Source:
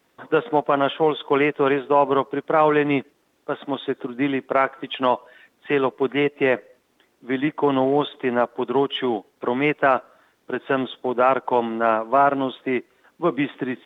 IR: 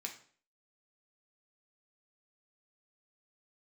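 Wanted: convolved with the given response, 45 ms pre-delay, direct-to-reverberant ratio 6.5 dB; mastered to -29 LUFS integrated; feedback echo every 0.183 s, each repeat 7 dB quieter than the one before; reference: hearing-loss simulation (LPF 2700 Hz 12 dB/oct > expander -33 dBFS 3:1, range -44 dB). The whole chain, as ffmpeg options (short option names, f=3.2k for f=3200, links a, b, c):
-filter_complex "[0:a]aecho=1:1:183|366|549|732|915:0.447|0.201|0.0905|0.0407|0.0183,asplit=2[a][b];[1:a]atrim=start_sample=2205,adelay=45[c];[b][c]afir=irnorm=-1:irlink=0,volume=-5dB[d];[a][d]amix=inputs=2:normalize=0,lowpass=2.7k,agate=range=-44dB:threshold=-33dB:ratio=3,volume=-8dB"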